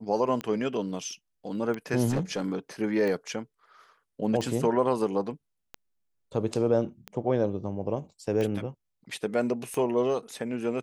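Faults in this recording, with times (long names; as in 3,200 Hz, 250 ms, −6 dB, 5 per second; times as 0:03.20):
scratch tick 45 rpm −20 dBFS
0:02.09–0:02.48: clipping −22.5 dBFS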